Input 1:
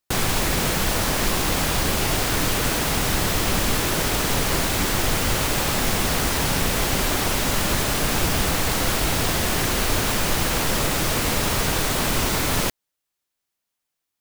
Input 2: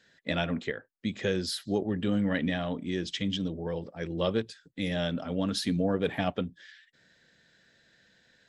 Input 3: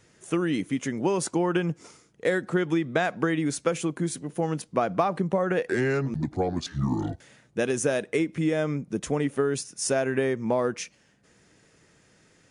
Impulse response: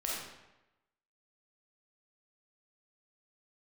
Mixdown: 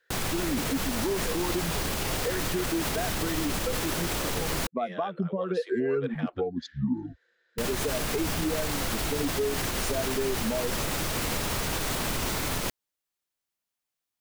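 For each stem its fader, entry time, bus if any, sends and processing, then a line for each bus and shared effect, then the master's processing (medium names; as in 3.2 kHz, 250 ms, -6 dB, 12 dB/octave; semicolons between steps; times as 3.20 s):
-5.5 dB, 0.00 s, muted 4.67–7.58 s, no send, none
-1.5 dB, 0.00 s, no send, low-pass 4 kHz 6 dB/octave; hard clipper -18 dBFS, distortion -34 dB; rippled Chebyshev high-pass 340 Hz, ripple 9 dB
-5.0 dB, 0.00 s, no send, expander on every frequency bin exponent 2; peaking EQ 320 Hz +12.5 dB 1.7 oct; comb 4.5 ms, depth 39%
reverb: none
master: peak limiter -19.5 dBFS, peak gain reduction 10.5 dB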